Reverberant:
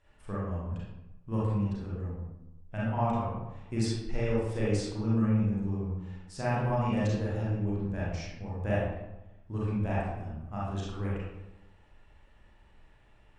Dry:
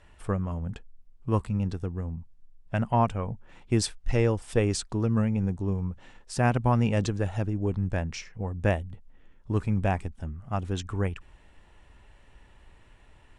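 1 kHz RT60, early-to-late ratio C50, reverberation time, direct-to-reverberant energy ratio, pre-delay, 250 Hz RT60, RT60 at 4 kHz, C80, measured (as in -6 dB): 0.95 s, -2.5 dB, 0.95 s, -8.0 dB, 32 ms, 1.0 s, 0.55 s, 2.0 dB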